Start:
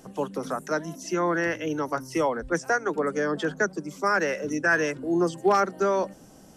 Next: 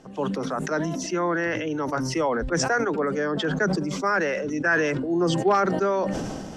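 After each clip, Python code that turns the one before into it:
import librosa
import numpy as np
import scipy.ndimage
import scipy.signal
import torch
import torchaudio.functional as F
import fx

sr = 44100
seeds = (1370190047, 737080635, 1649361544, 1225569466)

y = scipy.signal.sosfilt(scipy.signal.butter(2, 4900.0, 'lowpass', fs=sr, output='sos'), x)
y = fx.sustainer(y, sr, db_per_s=28.0)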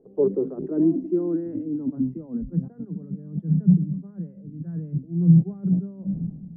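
y = fx.filter_sweep_lowpass(x, sr, from_hz=430.0, to_hz=170.0, start_s=0.06, end_s=3.08, q=6.1)
y = fx.upward_expand(y, sr, threshold_db=-35.0, expansion=1.5)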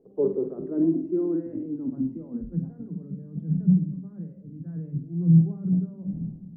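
y = fx.room_flutter(x, sr, wall_m=8.4, rt60_s=0.36)
y = fx.echo_warbled(y, sr, ms=118, feedback_pct=66, rate_hz=2.8, cents=218, wet_db=-22.5)
y = y * librosa.db_to_amplitude(-3.5)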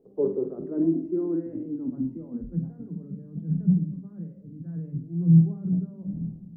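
y = fx.doubler(x, sr, ms=24.0, db=-13.0)
y = y * librosa.db_to_amplitude(-1.0)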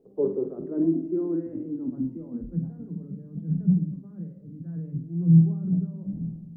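y = fx.rev_spring(x, sr, rt60_s=3.1, pass_ms=(55,), chirp_ms=50, drr_db=20.0)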